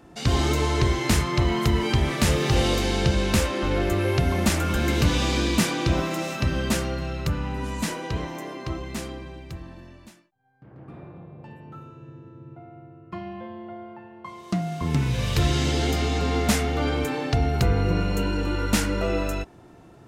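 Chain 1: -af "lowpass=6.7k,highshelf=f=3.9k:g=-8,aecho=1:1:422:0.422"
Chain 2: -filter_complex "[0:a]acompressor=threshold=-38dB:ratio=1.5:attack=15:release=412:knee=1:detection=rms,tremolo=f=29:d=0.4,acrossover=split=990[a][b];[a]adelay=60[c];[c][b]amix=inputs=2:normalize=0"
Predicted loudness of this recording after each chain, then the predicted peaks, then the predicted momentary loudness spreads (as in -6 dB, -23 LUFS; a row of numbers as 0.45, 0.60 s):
-24.0, -33.5 LUFS; -9.0, -16.5 dBFS; 20, 15 LU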